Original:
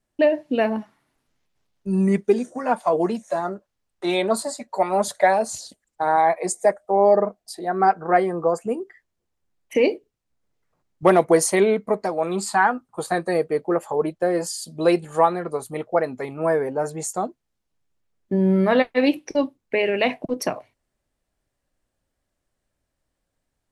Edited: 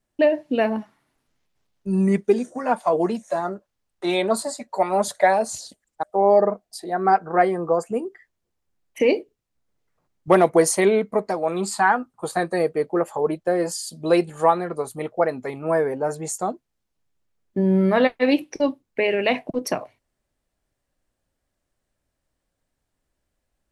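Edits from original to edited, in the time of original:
6.03–6.78 s: delete

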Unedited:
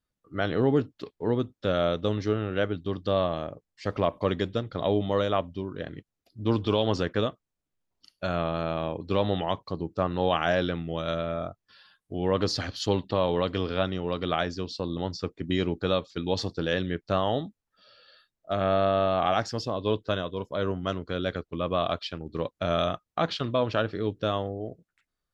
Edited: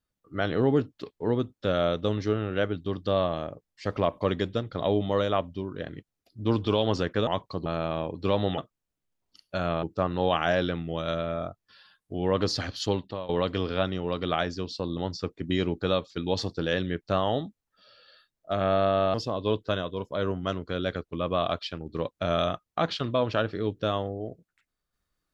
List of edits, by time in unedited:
7.27–8.52 s: swap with 9.44–9.83 s
12.83–13.29 s: fade out linear, to -17.5 dB
19.14–19.54 s: delete

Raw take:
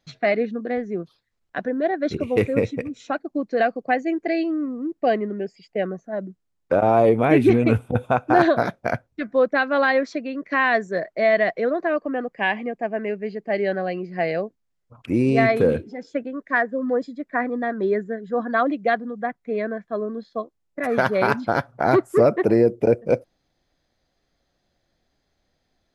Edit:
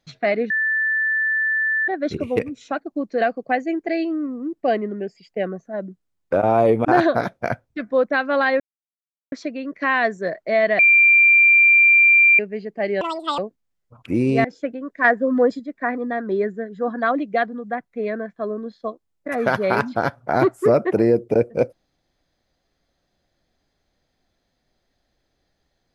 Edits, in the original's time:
0.50–1.88 s: bleep 1.76 kHz -17.5 dBFS
2.39–2.78 s: delete
7.24–8.27 s: delete
10.02 s: insert silence 0.72 s
11.49–13.09 s: bleep 2.37 kHz -9.5 dBFS
13.71–14.38 s: speed 179%
15.44–15.96 s: delete
16.56–17.11 s: gain +5.5 dB

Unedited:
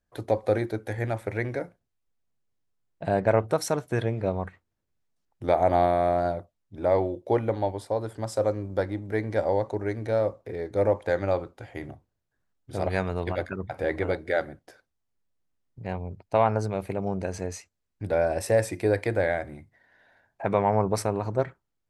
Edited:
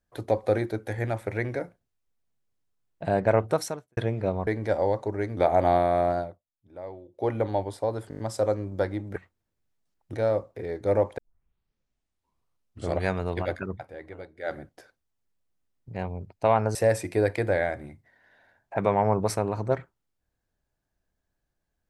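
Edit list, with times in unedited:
3.60–3.97 s: fade out quadratic
4.47–5.45 s: swap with 9.14–10.04 s
6.18–7.45 s: dip -16.5 dB, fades 0.29 s
8.17 s: stutter 0.02 s, 6 plays
11.08 s: tape start 1.87 s
13.62–14.47 s: dip -14.5 dB, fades 0.16 s
16.65–18.43 s: delete

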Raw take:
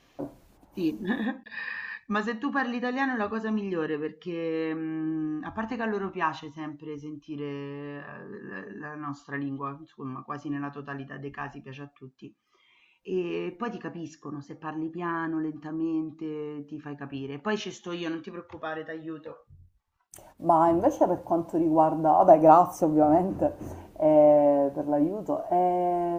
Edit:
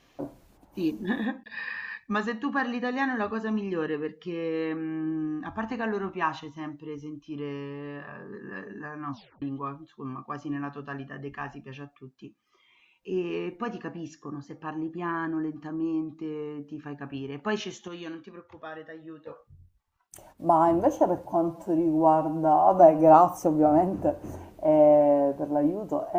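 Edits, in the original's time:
9.11 s: tape stop 0.31 s
17.88–19.27 s: gain -6 dB
21.25–22.51 s: stretch 1.5×

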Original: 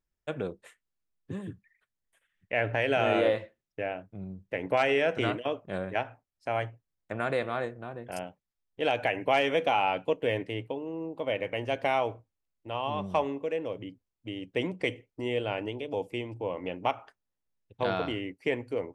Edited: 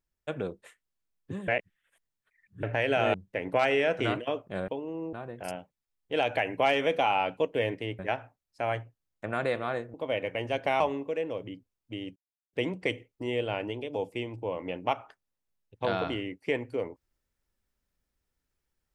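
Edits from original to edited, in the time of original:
1.48–2.63 s: reverse
3.14–4.32 s: delete
5.86–7.81 s: swap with 10.67–11.12 s
11.98–13.15 s: delete
14.51 s: insert silence 0.37 s

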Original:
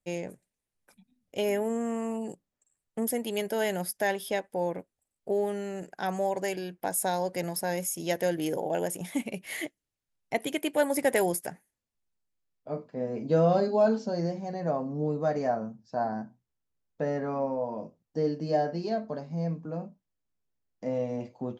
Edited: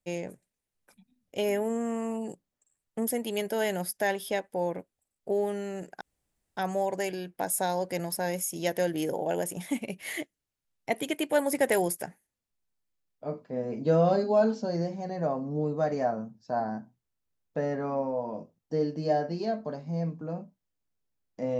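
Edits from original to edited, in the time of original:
6.01 s: insert room tone 0.56 s

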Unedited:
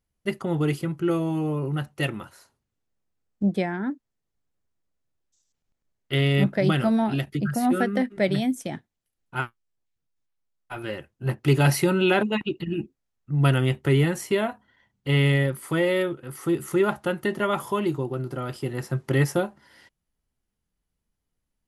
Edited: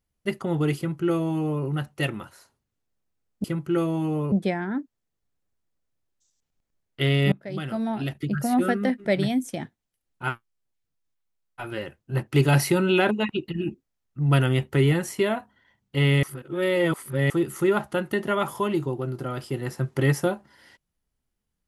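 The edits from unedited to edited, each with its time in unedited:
0.77–1.65 s: copy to 3.44 s
6.44–7.54 s: fade in, from -20.5 dB
15.35–16.42 s: reverse

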